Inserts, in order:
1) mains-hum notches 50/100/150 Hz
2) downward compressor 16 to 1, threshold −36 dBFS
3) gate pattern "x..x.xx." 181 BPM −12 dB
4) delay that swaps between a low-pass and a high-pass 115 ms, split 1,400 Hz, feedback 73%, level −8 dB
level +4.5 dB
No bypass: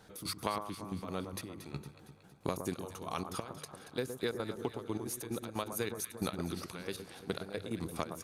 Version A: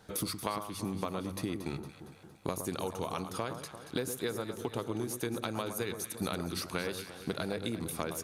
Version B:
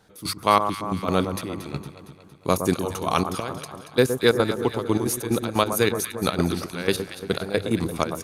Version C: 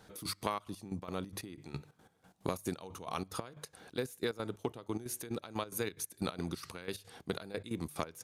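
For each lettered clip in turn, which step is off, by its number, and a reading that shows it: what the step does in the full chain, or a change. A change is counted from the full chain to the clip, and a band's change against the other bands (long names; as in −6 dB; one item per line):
3, change in crest factor −3.0 dB
2, average gain reduction 13.0 dB
4, change in momentary loudness spread −1 LU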